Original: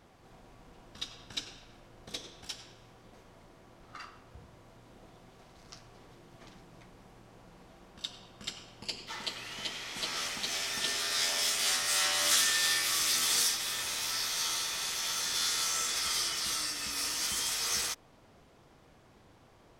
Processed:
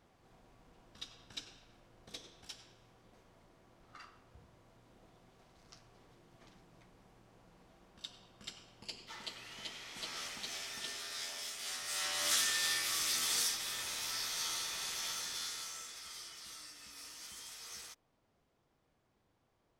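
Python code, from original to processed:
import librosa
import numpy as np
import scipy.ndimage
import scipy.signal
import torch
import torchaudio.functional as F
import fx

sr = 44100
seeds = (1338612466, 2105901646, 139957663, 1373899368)

y = fx.gain(x, sr, db=fx.line((10.4, -8.0), (11.57, -14.0), (12.29, -5.5), (15.05, -5.5), (15.97, -17.0)))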